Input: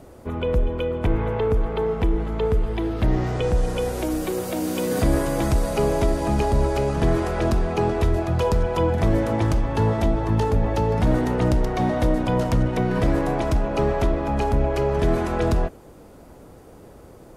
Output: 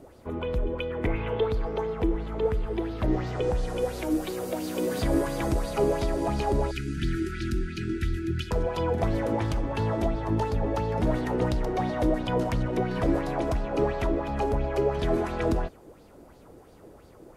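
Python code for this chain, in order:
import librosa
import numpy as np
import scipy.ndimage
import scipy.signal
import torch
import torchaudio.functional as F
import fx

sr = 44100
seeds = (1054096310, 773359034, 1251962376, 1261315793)

y = fx.peak_eq(x, sr, hz=fx.line((0.89, 1600.0), (1.85, 6500.0)), db=13.5, octaves=0.39, at=(0.89, 1.85), fade=0.02)
y = fx.brickwall_bandstop(y, sr, low_hz=390.0, high_hz=1300.0, at=(6.71, 8.51))
y = fx.bell_lfo(y, sr, hz=2.9, low_hz=300.0, high_hz=4600.0, db=10)
y = F.gain(torch.from_numpy(y), -7.5).numpy()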